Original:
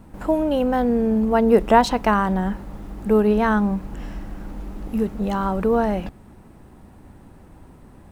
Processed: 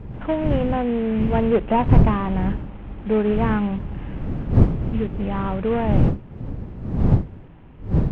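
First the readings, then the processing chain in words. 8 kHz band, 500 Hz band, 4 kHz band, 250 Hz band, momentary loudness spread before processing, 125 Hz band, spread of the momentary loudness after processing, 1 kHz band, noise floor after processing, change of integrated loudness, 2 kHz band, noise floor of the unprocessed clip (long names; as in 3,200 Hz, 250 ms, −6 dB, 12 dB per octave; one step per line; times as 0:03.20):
can't be measured, −3.0 dB, −6.0 dB, −0.5 dB, 19 LU, +11.0 dB, 14 LU, −4.5 dB, −42 dBFS, −1.5 dB, −5.0 dB, −47 dBFS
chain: variable-slope delta modulation 16 kbit/s
wind on the microphone 150 Hz −20 dBFS
level −2 dB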